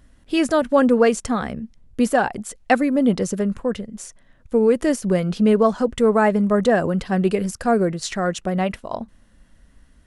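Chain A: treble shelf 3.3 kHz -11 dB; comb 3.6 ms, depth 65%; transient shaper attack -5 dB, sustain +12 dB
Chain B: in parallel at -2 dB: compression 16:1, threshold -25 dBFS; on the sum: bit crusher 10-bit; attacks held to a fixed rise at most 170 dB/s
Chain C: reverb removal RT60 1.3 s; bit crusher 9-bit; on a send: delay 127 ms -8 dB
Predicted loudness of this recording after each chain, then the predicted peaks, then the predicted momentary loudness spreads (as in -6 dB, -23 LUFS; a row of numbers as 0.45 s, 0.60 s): -18.0 LUFS, -20.5 LUFS, -20.5 LUFS; -1.5 dBFS, -4.0 dBFS, -3.0 dBFS; 12 LU, 16 LU, 14 LU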